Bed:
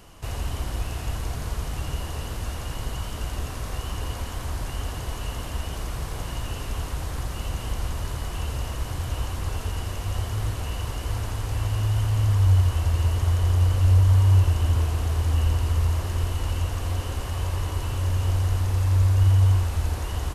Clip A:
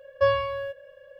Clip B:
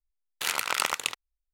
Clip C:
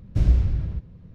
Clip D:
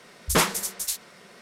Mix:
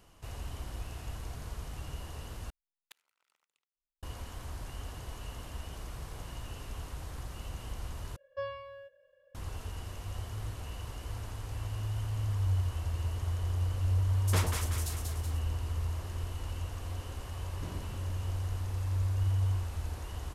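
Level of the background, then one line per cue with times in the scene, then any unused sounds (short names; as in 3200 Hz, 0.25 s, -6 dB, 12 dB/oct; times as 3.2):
bed -11.5 dB
2.5 replace with B -16 dB + flipped gate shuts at -20 dBFS, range -36 dB
8.16 replace with A -16.5 dB
13.98 add D -13.5 dB + split-band echo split 1000 Hz, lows 96 ms, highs 0.188 s, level -4 dB
17.46 add C -10.5 dB + HPF 250 Hz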